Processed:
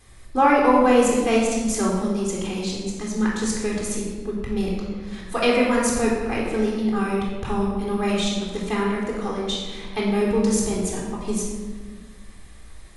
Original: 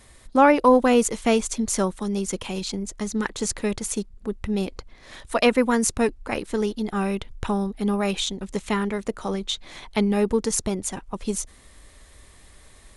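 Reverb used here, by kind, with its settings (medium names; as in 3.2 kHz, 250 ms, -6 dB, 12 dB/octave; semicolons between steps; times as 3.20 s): simulated room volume 1500 m³, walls mixed, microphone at 3.8 m; trim -5.5 dB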